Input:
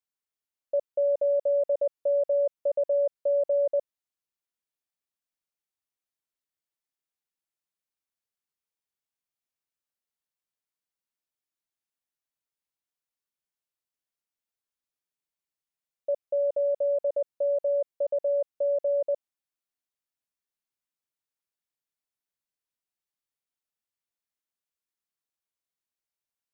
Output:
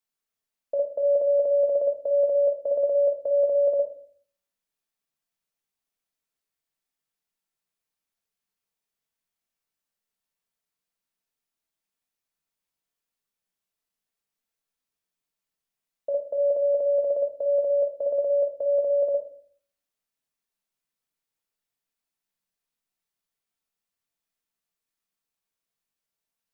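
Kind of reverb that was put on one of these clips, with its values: simulated room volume 440 m³, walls furnished, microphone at 1.6 m; trim +2.5 dB

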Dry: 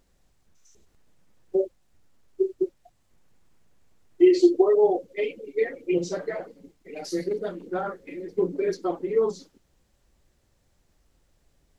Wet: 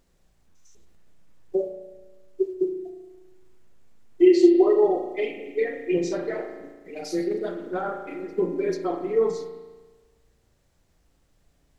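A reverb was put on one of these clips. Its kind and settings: spring tank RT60 1.3 s, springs 35 ms, chirp 35 ms, DRR 4.5 dB

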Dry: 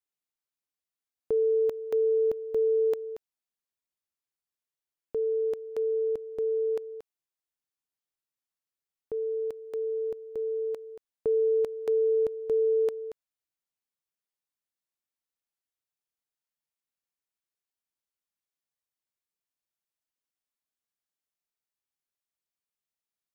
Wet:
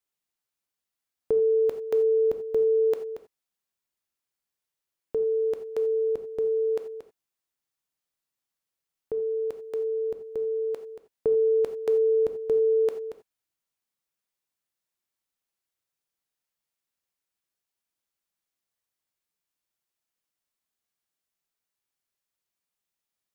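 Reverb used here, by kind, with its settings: gated-style reverb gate 110 ms flat, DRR 8 dB; trim +4 dB

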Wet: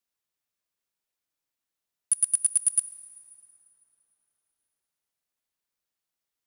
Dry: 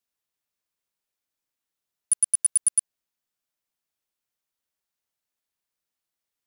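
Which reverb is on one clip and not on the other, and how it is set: plate-style reverb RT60 4.6 s, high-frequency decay 0.55×, DRR 15 dB; trim -1.5 dB

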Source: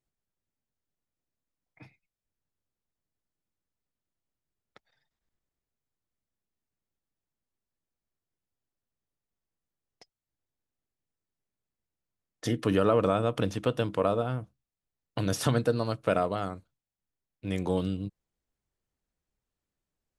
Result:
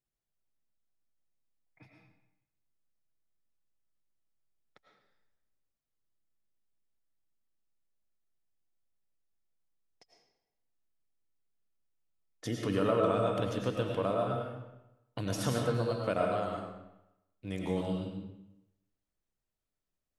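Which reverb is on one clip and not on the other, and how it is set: algorithmic reverb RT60 0.91 s, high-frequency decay 0.85×, pre-delay 65 ms, DRR 0 dB; trim -6.5 dB

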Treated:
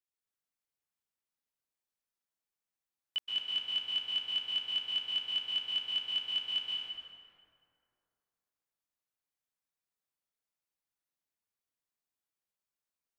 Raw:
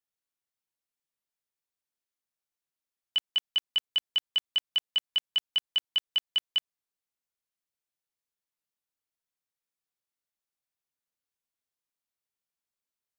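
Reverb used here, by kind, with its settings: plate-style reverb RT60 2.5 s, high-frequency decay 0.5×, pre-delay 115 ms, DRR -4.5 dB; trim -7.5 dB

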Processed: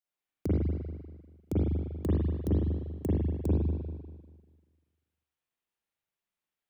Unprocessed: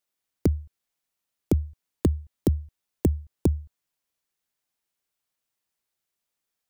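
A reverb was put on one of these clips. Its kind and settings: spring tank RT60 1.5 s, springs 39/49 ms, chirp 65 ms, DRR -8 dB; trim -12 dB

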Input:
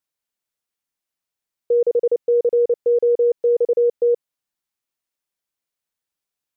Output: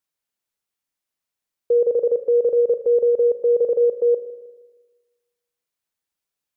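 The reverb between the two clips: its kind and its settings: spring tank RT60 1.3 s, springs 39/52 ms, chirp 50 ms, DRR 11 dB

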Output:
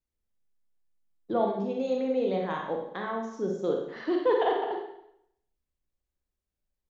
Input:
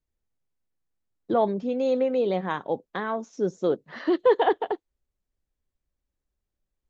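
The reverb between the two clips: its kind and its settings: Schroeder reverb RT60 0.74 s, combs from 31 ms, DRR 0.5 dB; trim -6 dB

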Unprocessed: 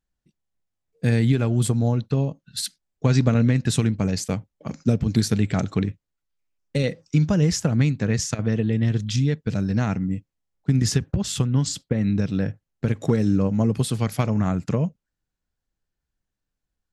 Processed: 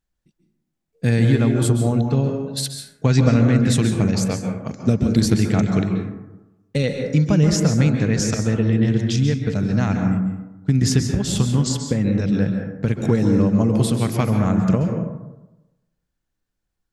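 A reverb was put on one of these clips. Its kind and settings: plate-style reverb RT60 1 s, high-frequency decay 0.35×, pre-delay 120 ms, DRR 3.5 dB; trim +2 dB

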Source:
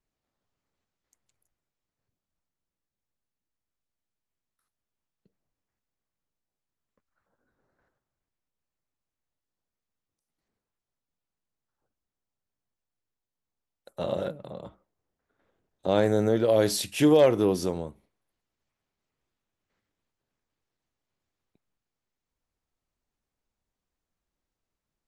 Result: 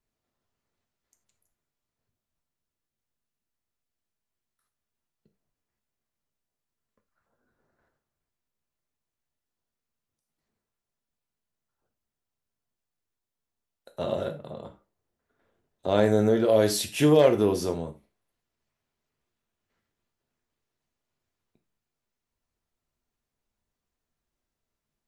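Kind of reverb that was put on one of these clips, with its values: gated-style reverb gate 120 ms falling, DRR 6 dB

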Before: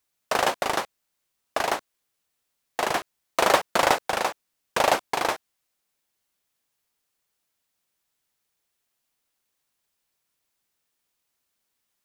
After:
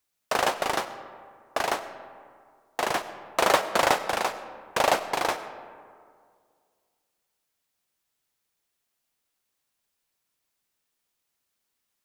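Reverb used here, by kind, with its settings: algorithmic reverb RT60 2.1 s, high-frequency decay 0.45×, pre-delay 50 ms, DRR 12 dB; trim -1.5 dB

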